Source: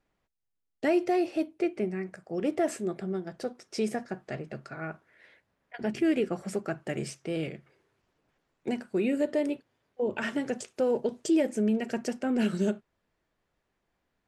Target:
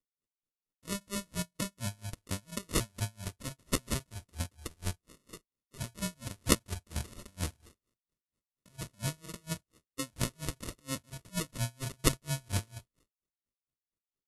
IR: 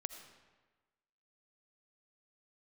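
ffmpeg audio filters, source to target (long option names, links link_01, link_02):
-filter_complex "[0:a]agate=range=-33dB:threshold=-58dB:ratio=3:detection=peak,lowshelf=frequency=210:gain=10,bandreject=frequency=630:width=12,acrossover=split=560|3700[link_01][link_02][link_03];[link_03]acontrast=63[link_04];[link_01][link_02][link_04]amix=inputs=3:normalize=0,alimiter=level_in=1.5dB:limit=-24dB:level=0:latency=1:release=42,volume=-1.5dB,acrossover=split=210[link_05][link_06];[link_06]acompressor=threshold=-54dB:ratio=1.5[link_07];[link_05][link_07]amix=inputs=2:normalize=0,crystalizer=i=8.5:c=0,acrusher=samples=31:mix=1:aa=0.000001,crystalizer=i=2.5:c=0,asetrate=24750,aresample=44100,atempo=1.7818,asplit=2[link_08][link_09];[1:a]atrim=start_sample=2205,atrim=end_sample=4410,lowshelf=frequency=210:gain=9[link_10];[link_09][link_10]afir=irnorm=-1:irlink=0,volume=-8.5dB[link_11];[link_08][link_11]amix=inputs=2:normalize=0,aeval=exprs='val(0)*pow(10,-34*(0.5-0.5*cos(2*PI*4.3*n/s))/20)':channel_layout=same"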